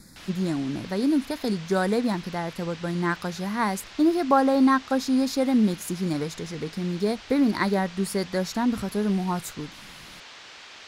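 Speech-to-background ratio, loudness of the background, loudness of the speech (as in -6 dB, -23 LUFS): 17.5 dB, -43.0 LUFS, -25.5 LUFS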